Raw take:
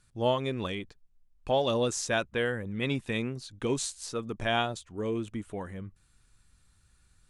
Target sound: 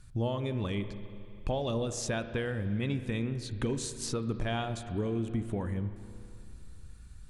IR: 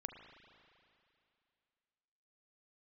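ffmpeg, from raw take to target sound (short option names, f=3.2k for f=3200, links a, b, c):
-filter_complex "[0:a]lowshelf=f=180:g=10,acompressor=threshold=-35dB:ratio=6,asplit=2[a][b];[1:a]atrim=start_sample=2205,lowshelf=f=460:g=4.5[c];[b][c]afir=irnorm=-1:irlink=0,volume=5.5dB[d];[a][d]amix=inputs=2:normalize=0,volume=-3dB"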